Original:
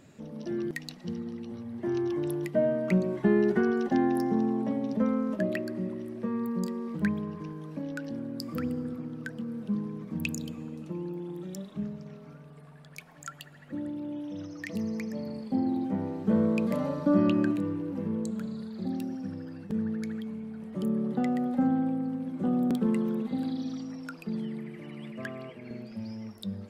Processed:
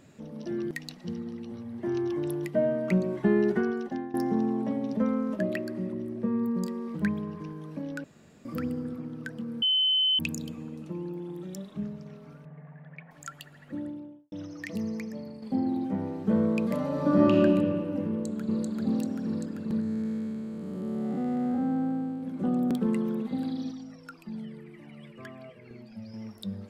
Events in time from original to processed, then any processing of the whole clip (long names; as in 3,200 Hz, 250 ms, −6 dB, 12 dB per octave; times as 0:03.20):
0:03.48–0:04.14: fade out, to −16.5 dB
0:05.92–0:06.57: tilt shelving filter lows +4.5 dB, about 680 Hz
0:08.04–0:08.45: fill with room tone
0:09.62–0:10.19: beep over 3,050 Hz −21 dBFS
0:12.45–0:13.11: loudspeaker in its box 130–2,200 Hz, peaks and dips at 160 Hz +9 dB, 370 Hz −10 dB, 540 Hz +5 dB, 770 Hz +3 dB, 1,300 Hz −5 dB, 1,900 Hz +7 dB
0:13.75–0:14.32: fade out and dull
0:14.88–0:15.42: fade out, to −7 dB
0:16.87–0:17.34: thrown reverb, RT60 2.4 s, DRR −2.5 dB
0:18.09–0:18.67: delay throw 390 ms, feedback 80%, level −0.5 dB
0:19.80–0:22.23: spectrum smeared in time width 411 ms
0:23.71–0:26.14: flanger whose copies keep moving one way falling 1.9 Hz